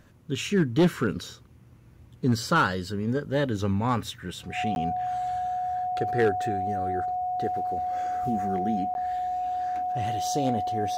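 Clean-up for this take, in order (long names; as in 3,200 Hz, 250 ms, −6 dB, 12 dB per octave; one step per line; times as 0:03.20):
clipped peaks rebuilt −15 dBFS
notch filter 730 Hz, Q 30
repair the gap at 0:04.75/0:08.94, 11 ms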